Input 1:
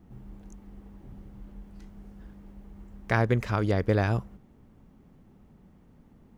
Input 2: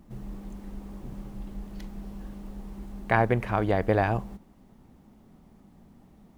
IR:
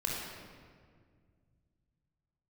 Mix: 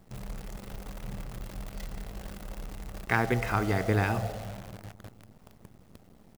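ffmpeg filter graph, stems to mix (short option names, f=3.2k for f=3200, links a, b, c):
-filter_complex "[0:a]volume=-0.5dB[a];[1:a]aecho=1:1:1.5:0.69,alimiter=limit=-19.5dB:level=0:latency=1:release=206,volume=-1,volume=-4.5dB,asplit=2[b][c];[c]volume=-6dB[d];[2:a]atrim=start_sample=2205[e];[d][e]afir=irnorm=-1:irlink=0[f];[a][b][f]amix=inputs=3:normalize=0,highpass=f=68:p=1,acrusher=bits=8:dc=4:mix=0:aa=0.000001"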